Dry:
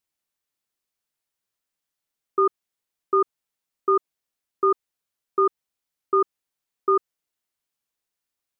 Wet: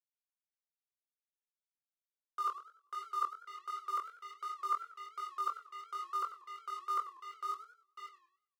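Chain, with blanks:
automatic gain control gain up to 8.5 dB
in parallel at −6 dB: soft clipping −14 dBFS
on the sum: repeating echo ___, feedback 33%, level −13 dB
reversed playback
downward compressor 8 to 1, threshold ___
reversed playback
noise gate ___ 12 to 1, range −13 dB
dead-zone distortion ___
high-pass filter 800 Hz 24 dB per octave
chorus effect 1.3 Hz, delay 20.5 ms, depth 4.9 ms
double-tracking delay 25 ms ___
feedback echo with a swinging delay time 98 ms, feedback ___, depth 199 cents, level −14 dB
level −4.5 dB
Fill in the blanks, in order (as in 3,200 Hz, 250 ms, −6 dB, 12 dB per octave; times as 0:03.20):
544 ms, −21 dBFS, −37 dBFS, −37 dBFS, −10.5 dB, 34%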